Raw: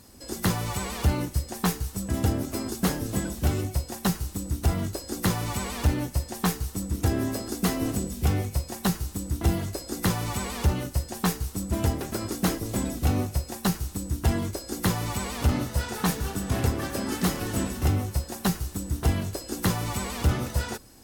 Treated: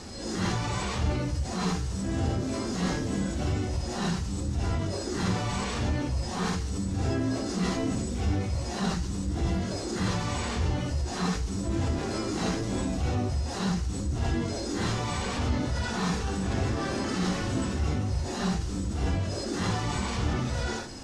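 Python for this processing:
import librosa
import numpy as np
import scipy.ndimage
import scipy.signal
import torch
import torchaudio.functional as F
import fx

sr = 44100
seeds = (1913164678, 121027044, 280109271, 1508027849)

y = fx.phase_scramble(x, sr, seeds[0], window_ms=200)
y = scipy.signal.sosfilt(scipy.signal.butter(4, 7000.0, 'lowpass', fs=sr, output='sos'), y)
y = fx.env_flatten(y, sr, amount_pct=50)
y = F.gain(torch.from_numpy(y), -5.5).numpy()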